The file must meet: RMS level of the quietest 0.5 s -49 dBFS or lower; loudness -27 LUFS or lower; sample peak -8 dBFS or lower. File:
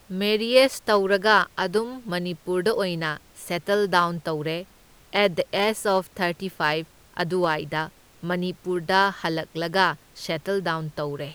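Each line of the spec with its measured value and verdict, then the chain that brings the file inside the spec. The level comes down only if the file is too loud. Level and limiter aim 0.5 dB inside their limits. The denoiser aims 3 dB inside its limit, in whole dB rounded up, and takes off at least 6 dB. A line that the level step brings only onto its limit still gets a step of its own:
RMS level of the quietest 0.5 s -53 dBFS: pass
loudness -24.0 LUFS: fail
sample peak -4.0 dBFS: fail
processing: trim -3.5 dB; peak limiter -8.5 dBFS

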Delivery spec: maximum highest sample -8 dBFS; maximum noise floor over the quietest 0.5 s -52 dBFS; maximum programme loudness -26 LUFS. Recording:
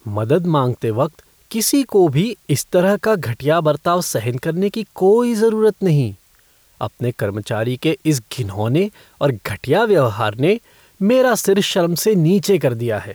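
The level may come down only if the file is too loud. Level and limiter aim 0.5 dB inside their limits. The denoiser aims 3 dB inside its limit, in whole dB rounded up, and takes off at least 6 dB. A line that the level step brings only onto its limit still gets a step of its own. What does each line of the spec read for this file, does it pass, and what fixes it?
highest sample -5.5 dBFS: fail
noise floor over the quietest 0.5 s -54 dBFS: pass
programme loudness -17.5 LUFS: fail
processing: trim -9 dB

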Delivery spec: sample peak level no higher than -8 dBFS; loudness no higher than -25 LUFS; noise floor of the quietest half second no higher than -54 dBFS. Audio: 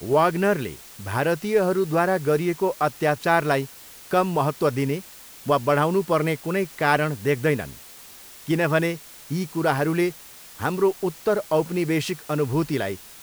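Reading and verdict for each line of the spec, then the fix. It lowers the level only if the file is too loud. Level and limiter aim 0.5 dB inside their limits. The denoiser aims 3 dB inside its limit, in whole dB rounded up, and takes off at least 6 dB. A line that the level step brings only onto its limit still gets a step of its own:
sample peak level -5.5 dBFS: fail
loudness -23.5 LUFS: fail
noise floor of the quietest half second -44 dBFS: fail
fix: noise reduction 11 dB, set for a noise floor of -44 dBFS; trim -2 dB; peak limiter -8.5 dBFS

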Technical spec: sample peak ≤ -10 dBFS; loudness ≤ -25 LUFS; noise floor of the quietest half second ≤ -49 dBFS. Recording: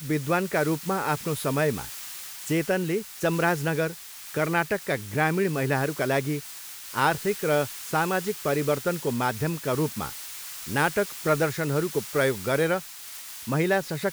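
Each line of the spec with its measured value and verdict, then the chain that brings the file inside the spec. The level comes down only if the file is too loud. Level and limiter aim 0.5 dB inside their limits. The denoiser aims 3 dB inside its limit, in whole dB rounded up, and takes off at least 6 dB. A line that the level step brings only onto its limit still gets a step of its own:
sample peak -8.0 dBFS: fail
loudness -26.5 LUFS: pass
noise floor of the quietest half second -41 dBFS: fail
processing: noise reduction 11 dB, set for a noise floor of -41 dBFS; peak limiter -10.5 dBFS

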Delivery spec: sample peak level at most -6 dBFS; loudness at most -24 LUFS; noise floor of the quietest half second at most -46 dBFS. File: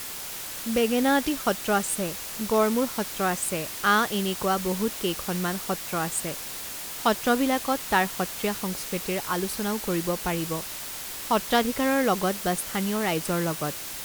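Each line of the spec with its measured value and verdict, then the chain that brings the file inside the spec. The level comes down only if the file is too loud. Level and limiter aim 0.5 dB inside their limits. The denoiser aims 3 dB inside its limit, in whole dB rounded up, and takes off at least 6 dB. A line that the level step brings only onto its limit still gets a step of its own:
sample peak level -8.0 dBFS: pass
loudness -26.0 LUFS: pass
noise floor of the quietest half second -36 dBFS: fail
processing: noise reduction 13 dB, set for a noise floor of -36 dBFS

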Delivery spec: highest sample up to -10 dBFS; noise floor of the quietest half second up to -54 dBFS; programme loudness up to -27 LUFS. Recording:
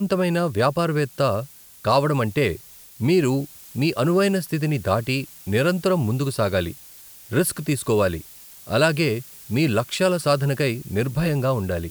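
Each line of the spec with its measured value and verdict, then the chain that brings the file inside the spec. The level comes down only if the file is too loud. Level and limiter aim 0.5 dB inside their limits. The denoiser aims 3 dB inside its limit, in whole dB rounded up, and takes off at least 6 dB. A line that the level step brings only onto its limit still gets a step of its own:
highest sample -5.5 dBFS: fail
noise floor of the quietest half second -45 dBFS: fail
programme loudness -22.5 LUFS: fail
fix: noise reduction 7 dB, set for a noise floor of -45 dBFS; trim -5 dB

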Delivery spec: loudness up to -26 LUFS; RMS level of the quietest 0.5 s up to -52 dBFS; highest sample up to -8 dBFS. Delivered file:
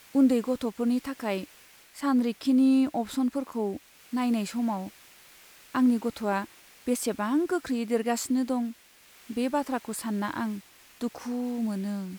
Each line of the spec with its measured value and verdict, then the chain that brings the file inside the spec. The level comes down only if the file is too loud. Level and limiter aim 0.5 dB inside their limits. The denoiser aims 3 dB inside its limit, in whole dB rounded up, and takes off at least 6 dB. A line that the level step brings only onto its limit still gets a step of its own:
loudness -28.5 LUFS: pass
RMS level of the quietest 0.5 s -56 dBFS: pass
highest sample -13.0 dBFS: pass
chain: none needed

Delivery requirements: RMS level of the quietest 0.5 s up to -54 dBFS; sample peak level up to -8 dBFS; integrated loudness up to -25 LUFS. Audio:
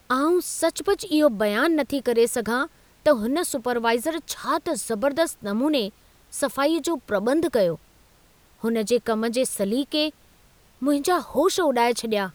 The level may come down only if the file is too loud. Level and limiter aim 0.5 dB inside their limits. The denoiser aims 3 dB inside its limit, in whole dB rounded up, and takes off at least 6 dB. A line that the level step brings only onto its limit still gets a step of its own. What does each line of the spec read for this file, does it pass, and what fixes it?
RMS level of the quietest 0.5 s -57 dBFS: pass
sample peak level -6.5 dBFS: fail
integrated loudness -23.5 LUFS: fail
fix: trim -2 dB

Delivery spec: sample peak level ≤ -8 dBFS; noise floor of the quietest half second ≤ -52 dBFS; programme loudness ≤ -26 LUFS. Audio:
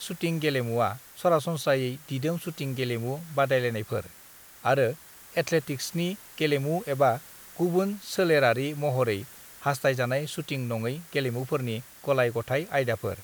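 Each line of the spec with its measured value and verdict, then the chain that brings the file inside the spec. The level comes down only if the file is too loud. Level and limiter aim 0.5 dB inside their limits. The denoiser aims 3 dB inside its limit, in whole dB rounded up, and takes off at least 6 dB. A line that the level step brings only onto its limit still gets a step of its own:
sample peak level -9.5 dBFS: pass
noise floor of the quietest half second -50 dBFS: fail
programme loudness -27.5 LUFS: pass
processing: noise reduction 6 dB, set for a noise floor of -50 dBFS

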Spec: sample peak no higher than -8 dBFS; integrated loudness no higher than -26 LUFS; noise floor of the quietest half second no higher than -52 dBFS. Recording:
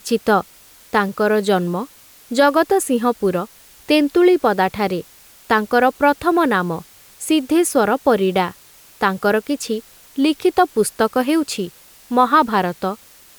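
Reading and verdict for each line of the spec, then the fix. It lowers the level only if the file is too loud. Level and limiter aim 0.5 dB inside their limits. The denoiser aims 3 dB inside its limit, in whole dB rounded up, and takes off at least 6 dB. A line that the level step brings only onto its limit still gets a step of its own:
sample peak -3.0 dBFS: fail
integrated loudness -18.0 LUFS: fail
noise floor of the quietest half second -47 dBFS: fail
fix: trim -8.5 dB

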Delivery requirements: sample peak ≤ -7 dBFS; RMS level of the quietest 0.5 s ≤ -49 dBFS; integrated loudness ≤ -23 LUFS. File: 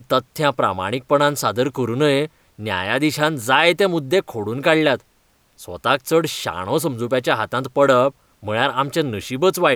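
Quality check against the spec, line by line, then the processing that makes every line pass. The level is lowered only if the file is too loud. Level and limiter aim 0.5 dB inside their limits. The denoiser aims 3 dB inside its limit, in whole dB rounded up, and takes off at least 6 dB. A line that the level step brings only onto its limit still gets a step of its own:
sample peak -2.0 dBFS: fail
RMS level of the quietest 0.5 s -60 dBFS: pass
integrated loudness -19.0 LUFS: fail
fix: trim -4.5 dB; peak limiter -7.5 dBFS

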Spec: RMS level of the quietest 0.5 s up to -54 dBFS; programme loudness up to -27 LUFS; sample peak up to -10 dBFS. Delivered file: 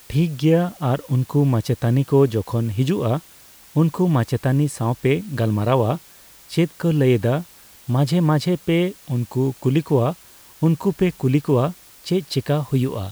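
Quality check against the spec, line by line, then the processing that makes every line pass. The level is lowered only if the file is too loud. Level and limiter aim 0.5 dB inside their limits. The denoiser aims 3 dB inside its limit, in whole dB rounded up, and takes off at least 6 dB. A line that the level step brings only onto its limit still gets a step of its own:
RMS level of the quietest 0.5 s -47 dBFS: fail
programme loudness -20.5 LUFS: fail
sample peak -5.0 dBFS: fail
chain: noise reduction 6 dB, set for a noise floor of -47 dBFS; trim -7 dB

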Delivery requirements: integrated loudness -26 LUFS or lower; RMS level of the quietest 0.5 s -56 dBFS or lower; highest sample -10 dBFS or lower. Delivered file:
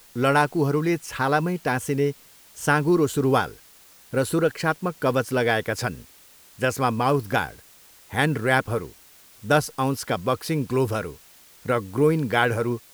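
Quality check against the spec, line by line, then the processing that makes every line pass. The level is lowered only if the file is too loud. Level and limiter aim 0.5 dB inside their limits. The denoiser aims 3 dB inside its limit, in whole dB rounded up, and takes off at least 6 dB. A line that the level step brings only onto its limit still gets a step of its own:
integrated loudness -23.5 LUFS: fail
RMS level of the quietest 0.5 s -52 dBFS: fail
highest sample -5.0 dBFS: fail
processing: noise reduction 6 dB, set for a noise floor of -52 dBFS; trim -3 dB; peak limiter -10.5 dBFS

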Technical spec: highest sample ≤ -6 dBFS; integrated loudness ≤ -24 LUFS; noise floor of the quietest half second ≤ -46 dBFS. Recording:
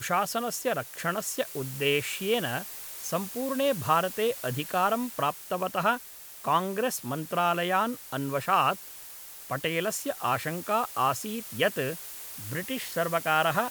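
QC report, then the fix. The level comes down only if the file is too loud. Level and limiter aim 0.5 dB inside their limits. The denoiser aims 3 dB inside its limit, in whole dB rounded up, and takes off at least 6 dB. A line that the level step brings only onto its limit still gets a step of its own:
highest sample -10.5 dBFS: pass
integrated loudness -28.5 LUFS: pass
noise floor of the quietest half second -45 dBFS: fail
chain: noise reduction 6 dB, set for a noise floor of -45 dBFS

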